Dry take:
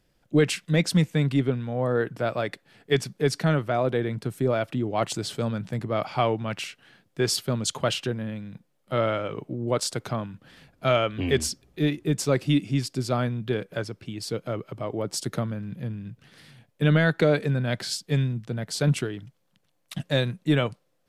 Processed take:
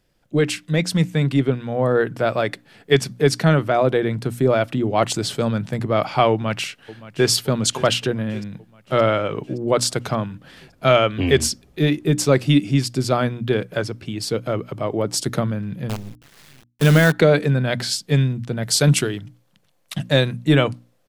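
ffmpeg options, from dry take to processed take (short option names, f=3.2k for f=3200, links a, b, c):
-filter_complex "[0:a]asplit=2[a][b];[b]afade=t=in:st=6.31:d=0.01,afade=t=out:st=7.29:d=0.01,aecho=0:1:570|1140|1710|2280|2850|3420|3990:0.141254|0.0918149|0.0596797|0.0387918|0.0252147|0.0163895|0.0106532[c];[a][c]amix=inputs=2:normalize=0,asettb=1/sr,asplit=3[d][e][f];[d]atrim=end=15.894[g];[e]atrim=start=15.89:end=17.12,asetpts=PTS-STARTPTS,afade=t=in:d=0.004:c=qsin,afade=t=out:st=1.226:d=0.004:c=qsin,acrusher=bits=6:dc=4:mix=0:aa=0.000001[h];[f]atrim=start=17.116[i];[g][h]acrossfade=d=0.004:c1=hsin:c2=qsin[j];[j][i]acrossfade=d=0.004:c1=qsin:c2=hsin,asettb=1/sr,asplit=3[k][l][m];[k]atrim=end=18.634[n];[l]atrim=start=18.63:end=19.19,asetpts=PTS-STARTPTS,afade=t=in:d=0.004:c=qsin,afade=t=out:st=0.556:d=0.004:c=qsin,highshelf=f=3.9k:g=9[o];[m]atrim=start=19.186[p];[n][o]acrossfade=d=0.004:c1=hsin:c2=qsin[q];[q][p]acrossfade=d=0.004:c1=qsin:c2=hsin,bandreject=f=60:t=h:w=6,bandreject=f=120:t=h:w=6,bandreject=f=180:t=h:w=6,bandreject=f=240:t=h:w=6,bandreject=f=300:t=h:w=6,dynaudnorm=f=900:g=3:m=5.5dB,volume=2dB"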